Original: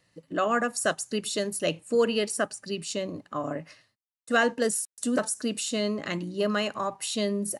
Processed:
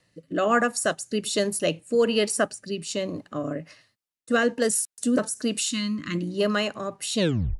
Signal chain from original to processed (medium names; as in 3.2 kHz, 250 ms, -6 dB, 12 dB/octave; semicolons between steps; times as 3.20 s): tape stop on the ending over 0.41 s; time-frequency box 5.71–6.15 s, 360–950 Hz -22 dB; rotary cabinet horn 1.2 Hz; trim +5 dB